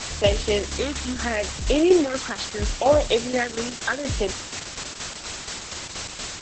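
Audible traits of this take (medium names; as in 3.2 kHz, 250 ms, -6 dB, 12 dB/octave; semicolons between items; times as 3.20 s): phasing stages 6, 0.74 Hz, lowest notch 620–1700 Hz; a quantiser's noise floor 6-bit, dither triangular; tremolo saw down 4.2 Hz, depth 60%; Opus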